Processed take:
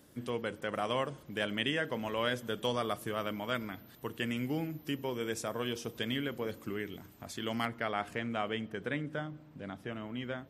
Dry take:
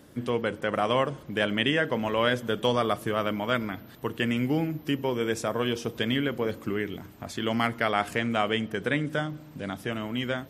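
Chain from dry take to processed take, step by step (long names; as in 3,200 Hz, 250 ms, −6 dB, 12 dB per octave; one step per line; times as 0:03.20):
high-shelf EQ 4,600 Hz +7 dB, from 0:07.65 −6 dB, from 0:09.01 −11.5 dB
level −8.5 dB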